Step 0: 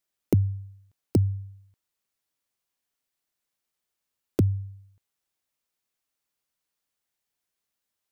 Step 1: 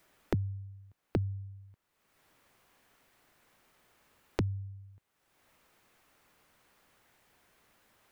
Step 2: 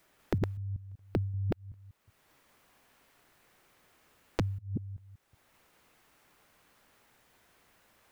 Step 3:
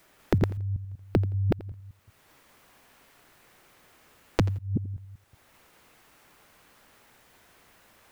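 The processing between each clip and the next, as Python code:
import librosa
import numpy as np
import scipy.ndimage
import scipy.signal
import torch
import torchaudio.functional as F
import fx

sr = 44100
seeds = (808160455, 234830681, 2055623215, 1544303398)

y1 = fx.band_squash(x, sr, depth_pct=100)
y1 = y1 * librosa.db_to_amplitude(-6.0)
y2 = fx.reverse_delay(y1, sr, ms=191, wet_db=-2.0)
y3 = fx.echo_feedback(y2, sr, ms=85, feedback_pct=22, wet_db=-18.5)
y3 = y3 * librosa.db_to_amplitude(7.0)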